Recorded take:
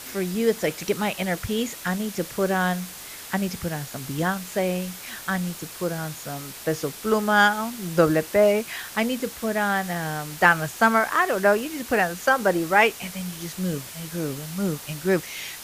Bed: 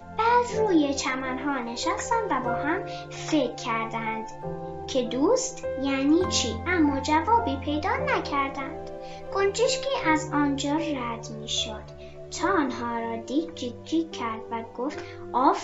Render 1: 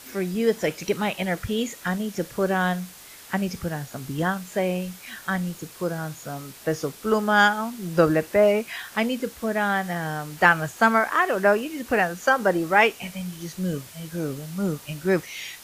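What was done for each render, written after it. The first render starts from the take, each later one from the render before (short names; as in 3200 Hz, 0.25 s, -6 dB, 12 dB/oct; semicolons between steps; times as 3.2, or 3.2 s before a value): noise print and reduce 6 dB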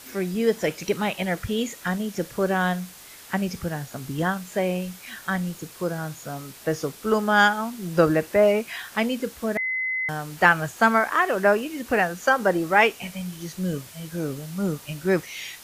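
9.57–10.09 bleep 2040 Hz -23.5 dBFS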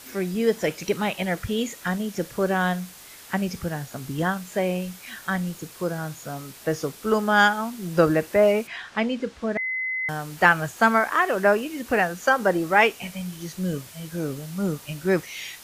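8.67–10.04 air absorption 110 m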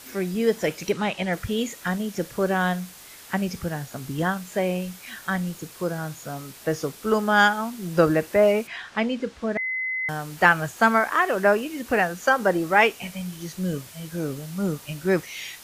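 0.92–1.33 LPF 7600 Hz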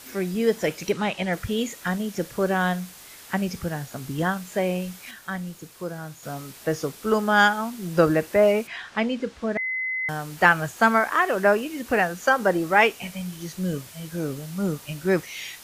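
5.11–6.23 gain -5 dB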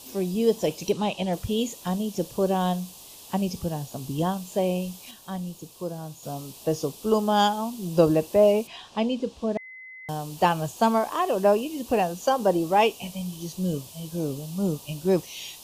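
band shelf 1700 Hz -16 dB 1 oct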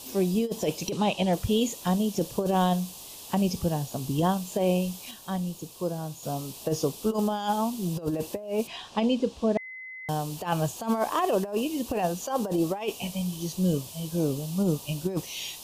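negative-ratio compressor -24 dBFS, ratio -0.5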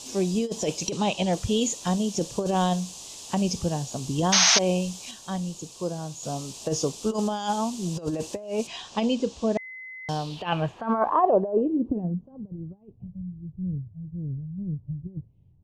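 4.32–4.59 painted sound noise 630–6600 Hz -22 dBFS; low-pass sweep 6900 Hz -> 110 Hz, 9.95–12.51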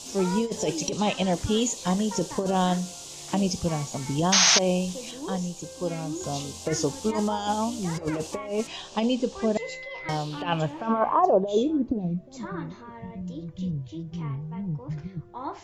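add bed -14 dB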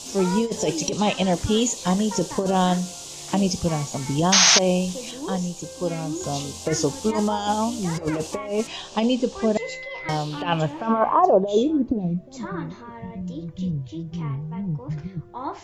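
gain +3.5 dB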